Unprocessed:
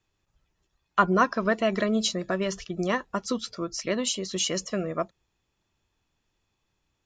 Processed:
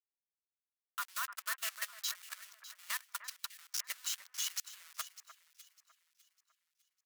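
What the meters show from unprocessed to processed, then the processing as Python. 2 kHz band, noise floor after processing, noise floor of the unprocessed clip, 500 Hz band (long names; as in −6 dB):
−11.5 dB, below −85 dBFS, −78 dBFS, −38.5 dB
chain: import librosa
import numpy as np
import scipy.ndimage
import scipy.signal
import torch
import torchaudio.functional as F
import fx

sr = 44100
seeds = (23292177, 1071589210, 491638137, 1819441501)

p1 = fx.delta_hold(x, sr, step_db=-25.0)
p2 = scipy.signal.sosfilt(scipy.signal.butter(4, 1300.0, 'highpass', fs=sr, output='sos'), p1)
p3 = fx.high_shelf(p2, sr, hz=4200.0, db=10.5)
p4 = fx.level_steps(p3, sr, step_db=15)
p5 = fx.clip_asym(p4, sr, top_db=-19.0, bottom_db=-18.0)
p6 = p5 + fx.echo_alternate(p5, sr, ms=301, hz=2100.0, feedback_pct=63, wet_db=-6.0, dry=0)
p7 = fx.upward_expand(p6, sr, threshold_db=-49.0, expansion=1.5)
y = p7 * librosa.db_to_amplitude(-5.0)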